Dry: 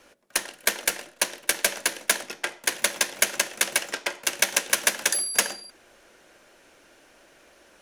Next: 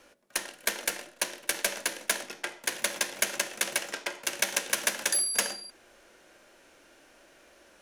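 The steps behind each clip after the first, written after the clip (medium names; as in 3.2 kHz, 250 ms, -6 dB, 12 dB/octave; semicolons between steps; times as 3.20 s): harmonic-percussive split percussive -6 dB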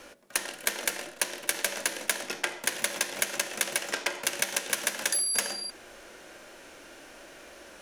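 compression 6:1, threshold -34 dBFS, peak gain reduction 13 dB; trim +9 dB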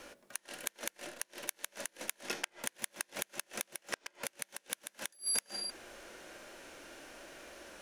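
inverted gate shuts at -16 dBFS, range -33 dB; trim -3 dB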